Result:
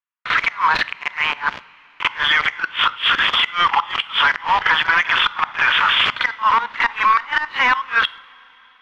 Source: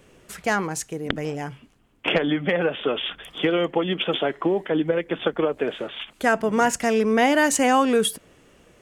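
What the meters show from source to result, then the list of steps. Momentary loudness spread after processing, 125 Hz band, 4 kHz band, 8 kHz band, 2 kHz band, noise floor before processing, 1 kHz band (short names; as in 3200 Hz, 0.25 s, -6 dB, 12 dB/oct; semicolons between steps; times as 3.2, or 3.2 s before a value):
6 LU, -10.0 dB, +11.0 dB, under -10 dB, +11.5 dB, -57 dBFS, +8.5 dB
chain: Chebyshev band-pass 950–4200 Hz, order 5; gate -54 dBFS, range -48 dB; tilt -2.5 dB/oct; compressor 8:1, threshold -32 dBFS, peak gain reduction 12.5 dB; sample leveller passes 5; level quantiser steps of 20 dB; flipped gate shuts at -26 dBFS, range -30 dB; air absorption 260 m; reverse echo 45 ms -14.5 dB; two-slope reverb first 0.42 s, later 4.3 s, from -18 dB, DRR 17.5 dB; maximiser +35.5 dB; gain -6 dB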